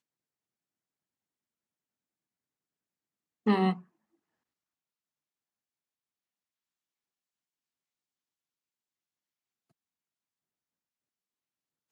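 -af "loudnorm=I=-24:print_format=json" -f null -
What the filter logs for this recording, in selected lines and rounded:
"input_i" : "-28.6",
"input_tp" : "-14.0",
"input_lra" : "0.0",
"input_thresh" : "-39.8",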